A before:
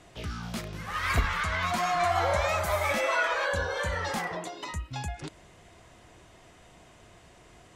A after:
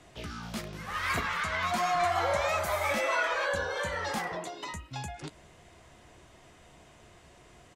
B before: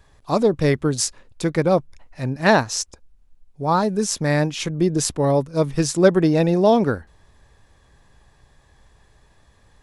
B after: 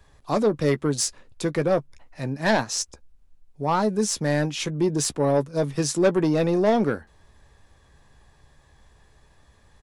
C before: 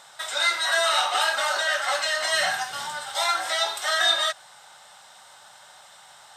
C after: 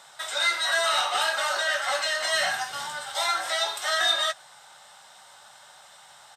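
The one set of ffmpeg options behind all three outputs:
-filter_complex "[0:a]acrossover=split=130[a][b];[a]acompressor=threshold=-44dB:ratio=6[c];[b]asoftclip=type=tanh:threshold=-12dB[d];[c][d]amix=inputs=2:normalize=0,asplit=2[e][f];[f]adelay=14,volume=-12.5dB[g];[e][g]amix=inputs=2:normalize=0,volume=-1.5dB"

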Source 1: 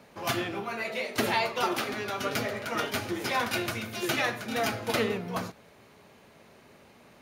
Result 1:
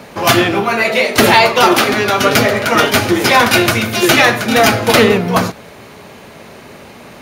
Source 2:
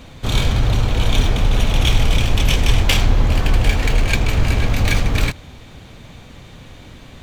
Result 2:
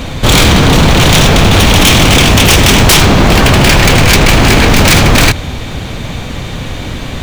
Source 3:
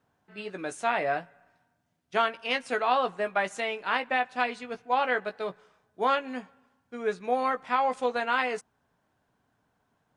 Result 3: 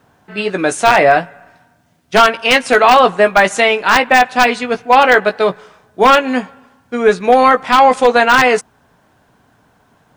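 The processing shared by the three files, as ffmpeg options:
-af "aeval=exprs='0.141*(abs(mod(val(0)/0.141+3,4)-2)-1)':c=same,apsyclip=21.5dB,volume=-2dB"

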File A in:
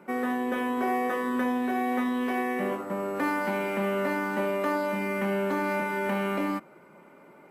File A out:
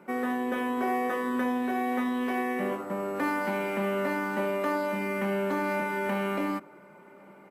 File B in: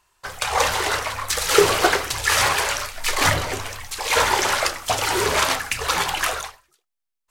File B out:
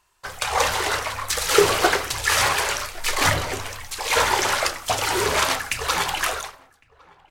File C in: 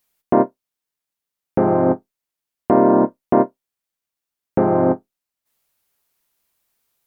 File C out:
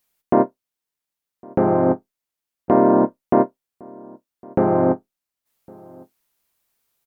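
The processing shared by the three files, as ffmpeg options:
-filter_complex "[0:a]asplit=2[a][b];[b]adelay=1108,volume=-25dB,highshelf=f=4k:g=-24.9[c];[a][c]amix=inputs=2:normalize=0,volume=-1dB"

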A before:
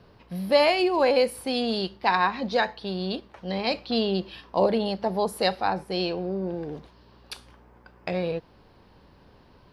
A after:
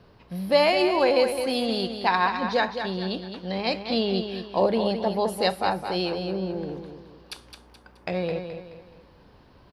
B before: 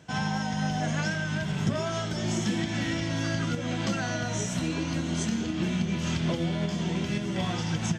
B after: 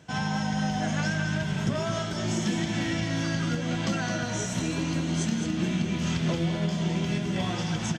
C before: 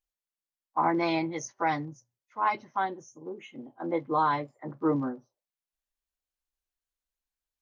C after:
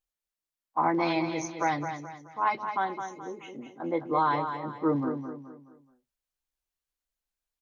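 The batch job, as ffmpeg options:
-af "aecho=1:1:213|426|639|852:0.398|0.151|0.0575|0.0218"

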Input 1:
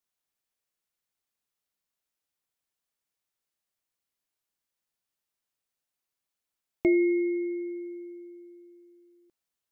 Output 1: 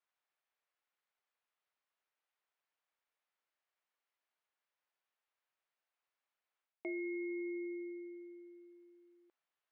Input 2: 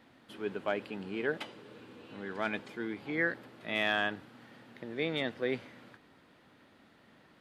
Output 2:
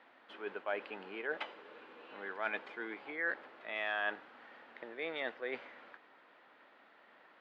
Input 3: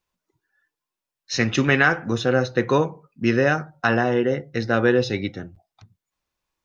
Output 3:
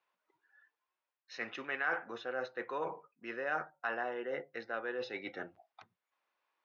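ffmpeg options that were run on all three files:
-af "areverse,acompressor=threshold=-32dB:ratio=16,areverse,highpass=600,lowpass=2.4k,volume=3.5dB"

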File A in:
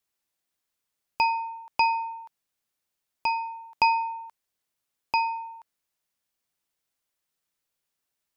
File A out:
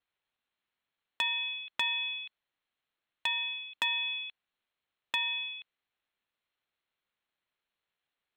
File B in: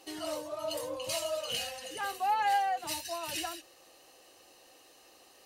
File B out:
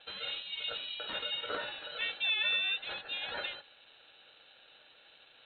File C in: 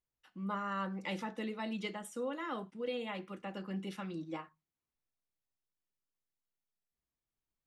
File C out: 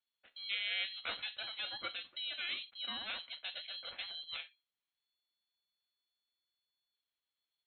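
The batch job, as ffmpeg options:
-filter_complex "[0:a]acrossover=split=270|700[a][b][c];[a]acompressor=threshold=-57dB:ratio=4[d];[b]acompressor=threshold=-48dB:ratio=4[e];[c]acompressor=threshold=-31dB:ratio=4[f];[d][e][f]amix=inputs=3:normalize=0,lowpass=f=3.3k:t=q:w=0.5098,lowpass=f=3.3k:t=q:w=0.6013,lowpass=f=3.3k:t=q:w=0.9,lowpass=f=3.3k:t=q:w=2.563,afreqshift=-3900,asplit=2[g][h];[h]aeval=exprs='0.0562*(abs(mod(val(0)/0.0562+3,4)-2)-1)':c=same,volume=-4dB[i];[g][i]amix=inputs=2:normalize=0,aeval=exprs='val(0)*sin(2*PI*440*n/s)':c=same"

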